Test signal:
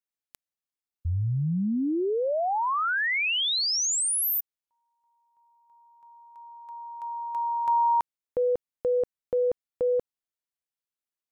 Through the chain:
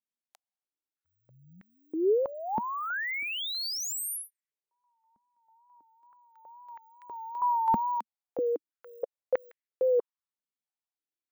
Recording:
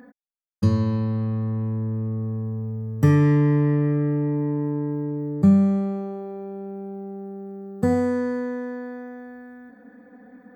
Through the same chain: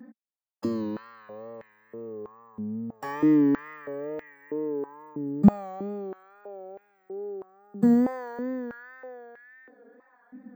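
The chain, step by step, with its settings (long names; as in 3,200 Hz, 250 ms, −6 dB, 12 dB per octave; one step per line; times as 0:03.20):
bad sample-rate conversion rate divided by 2×, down filtered, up hold
tape wow and flutter 77 cents
high-pass on a step sequencer 3.1 Hz 220–1,900 Hz
level −8 dB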